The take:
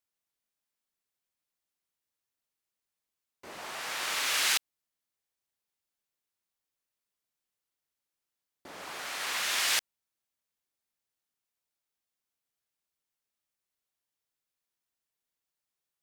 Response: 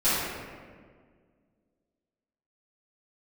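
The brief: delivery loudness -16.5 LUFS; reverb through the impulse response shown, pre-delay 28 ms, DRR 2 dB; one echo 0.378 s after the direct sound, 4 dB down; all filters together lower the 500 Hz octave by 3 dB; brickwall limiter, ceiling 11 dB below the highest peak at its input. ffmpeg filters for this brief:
-filter_complex "[0:a]equalizer=f=500:t=o:g=-4,alimiter=level_in=2dB:limit=-24dB:level=0:latency=1,volume=-2dB,aecho=1:1:378:0.631,asplit=2[a][b];[1:a]atrim=start_sample=2205,adelay=28[c];[b][c]afir=irnorm=-1:irlink=0,volume=-17dB[d];[a][d]amix=inputs=2:normalize=0,volume=17.5dB"

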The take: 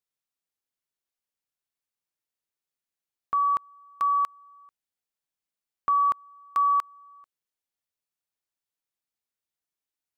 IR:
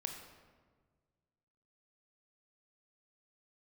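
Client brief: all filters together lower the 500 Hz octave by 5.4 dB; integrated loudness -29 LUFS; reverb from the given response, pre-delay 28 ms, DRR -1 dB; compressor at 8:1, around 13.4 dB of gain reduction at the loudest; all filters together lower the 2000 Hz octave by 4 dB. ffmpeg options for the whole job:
-filter_complex "[0:a]equalizer=f=500:t=o:g=-7,equalizer=f=2k:t=o:g=-5,acompressor=threshold=-38dB:ratio=8,asplit=2[a][b];[1:a]atrim=start_sample=2205,adelay=28[c];[b][c]afir=irnorm=-1:irlink=0,volume=2dB[d];[a][d]amix=inputs=2:normalize=0,volume=10.5dB"

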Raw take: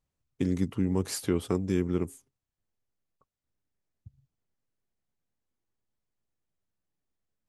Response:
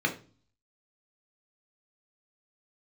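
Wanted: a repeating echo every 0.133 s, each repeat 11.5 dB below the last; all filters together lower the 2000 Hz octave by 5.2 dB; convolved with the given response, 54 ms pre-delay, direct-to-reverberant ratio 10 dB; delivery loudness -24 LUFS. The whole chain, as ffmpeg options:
-filter_complex "[0:a]equalizer=f=2k:t=o:g=-6.5,aecho=1:1:133|266|399:0.266|0.0718|0.0194,asplit=2[a][b];[1:a]atrim=start_sample=2205,adelay=54[c];[b][c]afir=irnorm=-1:irlink=0,volume=-20dB[d];[a][d]amix=inputs=2:normalize=0,volume=5dB"

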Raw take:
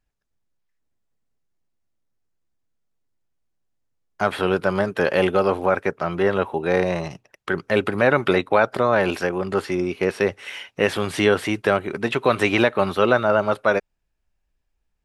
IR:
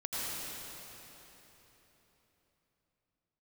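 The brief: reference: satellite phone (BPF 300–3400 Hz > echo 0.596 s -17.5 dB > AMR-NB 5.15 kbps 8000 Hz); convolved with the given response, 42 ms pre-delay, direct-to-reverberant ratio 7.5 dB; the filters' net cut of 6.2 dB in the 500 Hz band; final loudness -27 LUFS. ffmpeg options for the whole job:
-filter_complex "[0:a]equalizer=f=500:t=o:g=-7,asplit=2[a][b];[1:a]atrim=start_sample=2205,adelay=42[c];[b][c]afir=irnorm=-1:irlink=0,volume=-13dB[d];[a][d]amix=inputs=2:normalize=0,highpass=300,lowpass=3.4k,aecho=1:1:596:0.133" -ar 8000 -c:a libopencore_amrnb -b:a 5150

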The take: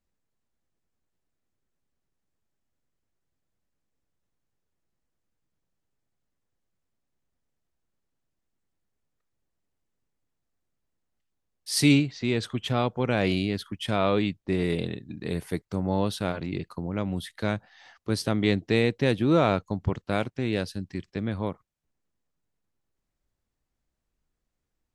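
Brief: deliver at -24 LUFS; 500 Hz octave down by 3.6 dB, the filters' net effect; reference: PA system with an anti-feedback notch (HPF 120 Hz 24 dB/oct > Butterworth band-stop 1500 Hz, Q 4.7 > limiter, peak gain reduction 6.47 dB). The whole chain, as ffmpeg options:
-af "highpass=f=120:w=0.5412,highpass=f=120:w=1.3066,asuperstop=centerf=1500:order=8:qfactor=4.7,equalizer=f=500:t=o:g=-4.5,volume=6.5dB,alimiter=limit=-10.5dB:level=0:latency=1"

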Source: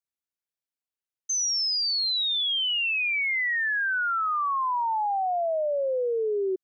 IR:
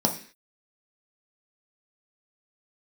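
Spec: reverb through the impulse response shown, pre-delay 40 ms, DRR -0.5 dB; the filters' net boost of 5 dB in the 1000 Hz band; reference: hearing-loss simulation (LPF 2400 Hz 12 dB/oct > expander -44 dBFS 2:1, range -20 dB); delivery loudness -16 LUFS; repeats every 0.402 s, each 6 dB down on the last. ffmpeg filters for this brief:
-filter_complex "[0:a]equalizer=f=1k:t=o:g=6.5,aecho=1:1:402|804|1206|1608|2010|2412:0.501|0.251|0.125|0.0626|0.0313|0.0157,asplit=2[a][b];[1:a]atrim=start_sample=2205,adelay=40[c];[b][c]afir=irnorm=-1:irlink=0,volume=-11dB[d];[a][d]amix=inputs=2:normalize=0,lowpass=2.4k,agate=range=-20dB:threshold=-44dB:ratio=2,volume=1.5dB"

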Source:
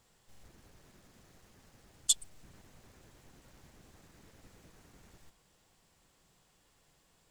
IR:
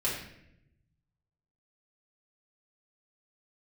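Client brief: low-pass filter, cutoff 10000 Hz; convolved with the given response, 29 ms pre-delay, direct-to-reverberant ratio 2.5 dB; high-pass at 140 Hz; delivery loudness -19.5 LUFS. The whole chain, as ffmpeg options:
-filter_complex "[0:a]highpass=140,lowpass=10k,asplit=2[a][b];[1:a]atrim=start_sample=2205,adelay=29[c];[b][c]afir=irnorm=-1:irlink=0,volume=-10dB[d];[a][d]amix=inputs=2:normalize=0,volume=12dB"

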